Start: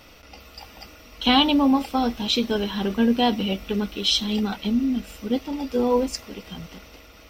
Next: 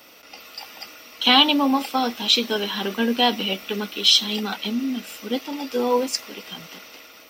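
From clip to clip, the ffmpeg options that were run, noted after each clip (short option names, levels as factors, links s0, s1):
-filter_complex "[0:a]highpass=250,highshelf=f=9300:g=10.5,acrossover=split=400|1000|6300[s0][s1][s2][s3];[s2]dynaudnorm=f=110:g=5:m=1.88[s4];[s0][s1][s4][s3]amix=inputs=4:normalize=0"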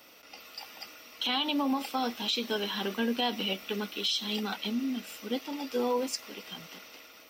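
-af "alimiter=limit=0.211:level=0:latency=1:release=102,volume=0.473"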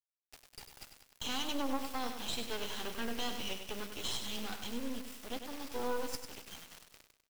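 -af "acrusher=bits=4:dc=4:mix=0:aa=0.000001,aecho=1:1:98|196|294|392|490:0.398|0.171|0.0736|0.0317|0.0136,volume=0.596"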